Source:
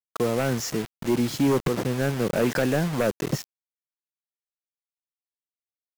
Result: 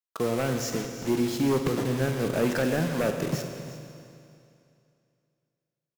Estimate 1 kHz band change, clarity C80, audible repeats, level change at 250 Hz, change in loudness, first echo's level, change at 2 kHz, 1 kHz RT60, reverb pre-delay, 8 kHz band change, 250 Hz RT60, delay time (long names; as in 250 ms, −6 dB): −2.5 dB, 6.5 dB, 1, −2.0 dB, −2.0 dB, −15.5 dB, −2.0 dB, 2.6 s, 13 ms, −2.0 dB, 2.5 s, 351 ms